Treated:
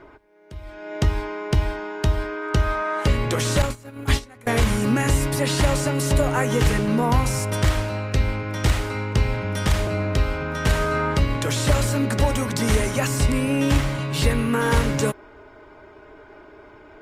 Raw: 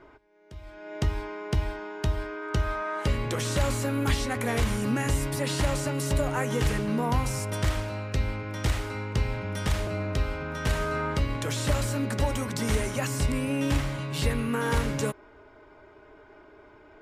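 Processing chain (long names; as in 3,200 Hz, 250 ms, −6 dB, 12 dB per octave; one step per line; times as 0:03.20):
0:03.62–0:04.47: noise gate −24 dBFS, range −23 dB
level +6.5 dB
Opus 48 kbit/s 48,000 Hz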